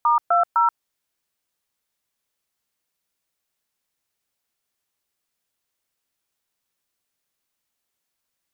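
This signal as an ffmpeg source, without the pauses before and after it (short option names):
-f lavfi -i "aevalsrc='0.141*clip(min(mod(t,0.254),0.131-mod(t,0.254))/0.002,0,1)*(eq(floor(t/0.254),0)*(sin(2*PI*941*mod(t,0.254))+sin(2*PI*1209*mod(t,0.254)))+eq(floor(t/0.254),1)*(sin(2*PI*697*mod(t,0.254))+sin(2*PI*1336*mod(t,0.254)))+eq(floor(t/0.254),2)*(sin(2*PI*941*mod(t,0.254))+sin(2*PI*1336*mod(t,0.254))))':d=0.762:s=44100"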